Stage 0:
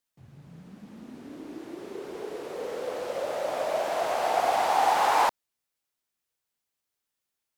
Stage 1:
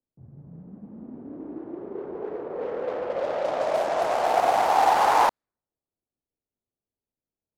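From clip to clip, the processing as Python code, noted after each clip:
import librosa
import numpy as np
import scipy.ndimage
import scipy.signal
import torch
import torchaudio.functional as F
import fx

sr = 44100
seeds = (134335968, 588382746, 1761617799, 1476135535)

y = scipy.signal.medfilt(x, 15)
y = fx.env_lowpass(y, sr, base_hz=460.0, full_db=-23.5)
y = y * 10.0 ** (4.0 / 20.0)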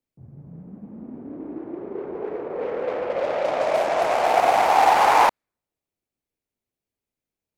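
y = fx.peak_eq(x, sr, hz=2300.0, db=5.5, octaves=0.53)
y = y * 10.0 ** (3.0 / 20.0)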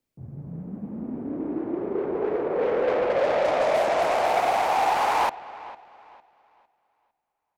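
y = fx.rider(x, sr, range_db=5, speed_s=0.5)
y = 10.0 ** (-15.5 / 20.0) * np.tanh(y / 10.0 ** (-15.5 / 20.0))
y = fx.echo_wet_lowpass(y, sr, ms=454, feedback_pct=30, hz=3600.0, wet_db=-17.5)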